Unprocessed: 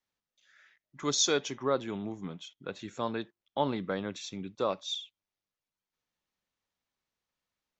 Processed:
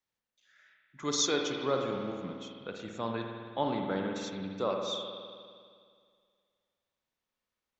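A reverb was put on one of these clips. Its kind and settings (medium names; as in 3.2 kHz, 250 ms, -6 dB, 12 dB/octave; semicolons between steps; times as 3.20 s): spring tank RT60 2.1 s, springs 52 ms, chirp 45 ms, DRR 1.5 dB; trim -2.5 dB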